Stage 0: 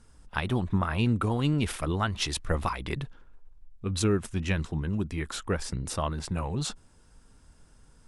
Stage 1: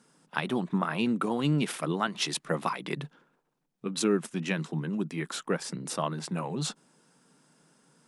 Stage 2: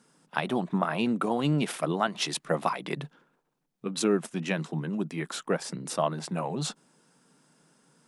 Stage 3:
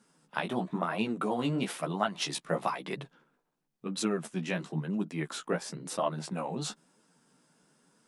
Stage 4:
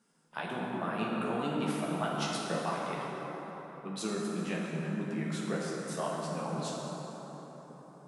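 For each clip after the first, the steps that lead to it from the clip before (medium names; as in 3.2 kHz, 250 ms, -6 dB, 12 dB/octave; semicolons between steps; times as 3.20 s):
elliptic high-pass 150 Hz; trim +1 dB
dynamic bell 670 Hz, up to +7 dB, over -47 dBFS, Q 2.1
flange 1 Hz, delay 9 ms, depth 9.2 ms, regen +8%
reverberation RT60 4.8 s, pre-delay 7 ms, DRR -3.5 dB; trim -6.5 dB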